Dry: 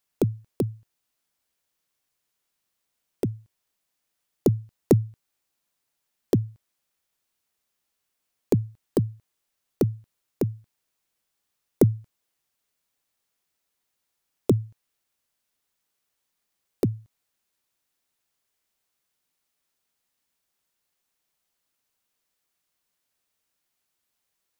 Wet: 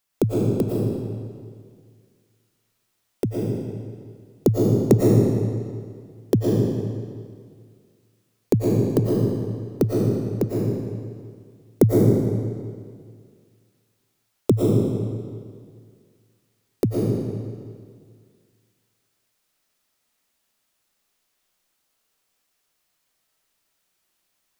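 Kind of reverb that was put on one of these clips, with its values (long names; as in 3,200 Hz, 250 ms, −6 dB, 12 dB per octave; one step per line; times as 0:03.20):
comb and all-pass reverb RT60 2 s, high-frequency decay 0.9×, pre-delay 75 ms, DRR −4 dB
level +2 dB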